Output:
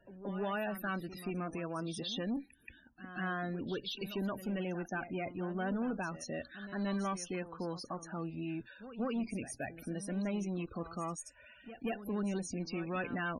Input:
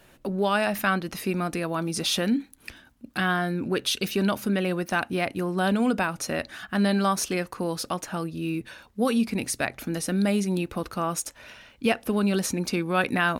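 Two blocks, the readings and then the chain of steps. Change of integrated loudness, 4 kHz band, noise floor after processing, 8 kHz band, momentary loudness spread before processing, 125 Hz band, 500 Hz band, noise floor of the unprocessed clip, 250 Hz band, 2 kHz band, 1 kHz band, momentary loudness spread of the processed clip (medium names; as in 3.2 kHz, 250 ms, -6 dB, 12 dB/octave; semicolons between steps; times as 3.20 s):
-12.0 dB, -14.5 dB, -61 dBFS, -15.5 dB, 8 LU, -11.0 dB, -12.0 dB, -56 dBFS, -11.5 dB, -13.5 dB, -13.0 dB, 7 LU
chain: valve stage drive 22 dB, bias 0.3; loudest bins only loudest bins 32; pre-echo 178 ms -13 dB; trim -8.5 dB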